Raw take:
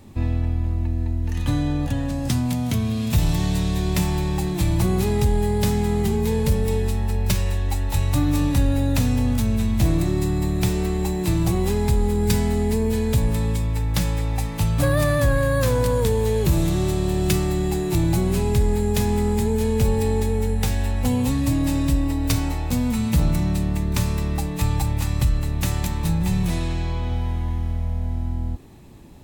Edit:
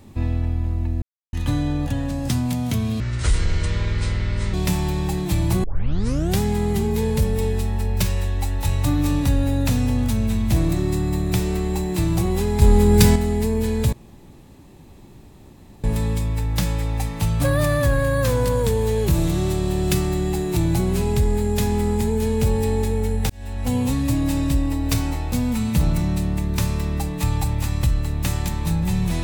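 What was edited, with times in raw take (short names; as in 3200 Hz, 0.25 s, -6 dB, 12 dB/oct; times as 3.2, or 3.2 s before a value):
1.02–1.33 mute
3–3.83 speed 54%
4.93 tape start 0.76 s
11.91–12.45 gain +6.5 dB
13.22 insert room tone 1.91 s
20.68–21.14 fade in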